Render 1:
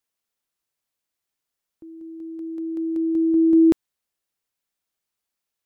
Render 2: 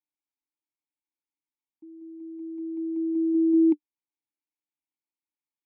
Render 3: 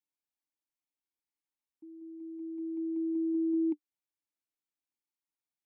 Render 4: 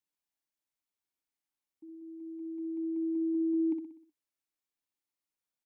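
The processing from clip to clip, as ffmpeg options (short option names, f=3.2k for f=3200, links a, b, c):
-filter_complex "[0:a]asplit=3[a][b][c];[a]bandpass=f=300:t=q:w=8,volume=0dB[d];[b]bandpass=f=870:t=q:w=8,volume=-6dB[e];[c]bandpass=f=2.24k:t=q:w=8,volume=-9dB[f];[d][e][f]amix=inputs=3:normalize=0"
-af "acompressor=threshold=-27dB:ratio=2.5,volume=-3.5dB"
-af "aecho=1:1:62|124|186|248|310|372:0.447|0.214|0.103|0.0494|0.0237|0.0114"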